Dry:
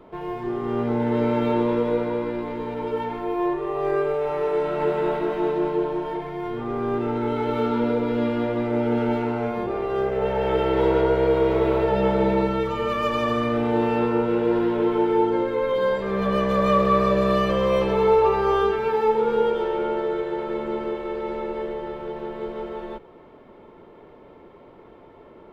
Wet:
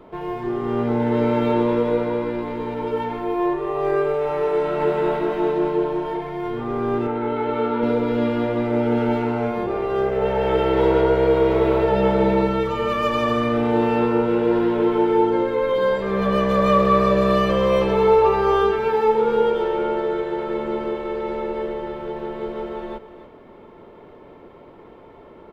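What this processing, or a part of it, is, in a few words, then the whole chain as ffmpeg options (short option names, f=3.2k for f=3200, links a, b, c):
ducked delay: -filter_complex "[0:a]asettb=1/sr,asplit=3[a][b][c];[a]atrim=end=7.074[d];[b]atrim=start=7.07:end=7.83,asetpts=PTS-STARTPTS,afade=t=in:d=0.004:c=qsin,afade=t=out:st=0.756:d=0.004:c=qsin,bass=f=250:g=-7,treble=f=4k:g=-13[e];[c]atrim=start=7.826[f];[d][e]acrossfade=d=0.004:c1=hsin:c2=qsin[g];[g][f]acrossfade=d=0.004:c1=qsin:c2=hsin,asplit=3[h][i][j];[i]adelay=286,volume=-9dB[k];[j]apad=whole_len=1138389[l];[k][l]sidechaincompress=threshold=-34dB:ratio=8:attack=16:release=1290[m];[h][m]amix=inputs=2:normalize=0,volume=2.5dB"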